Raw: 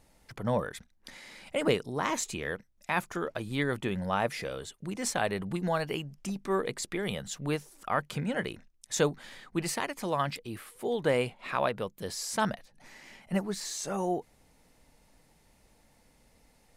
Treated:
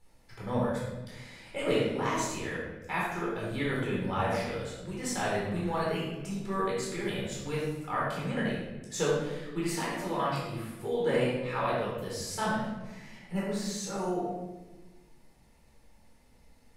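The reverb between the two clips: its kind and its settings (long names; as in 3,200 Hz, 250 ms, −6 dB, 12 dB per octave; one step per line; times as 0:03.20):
rectangular room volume 600 cubic metres, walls mixed, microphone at 4.2 metres
level −10 dB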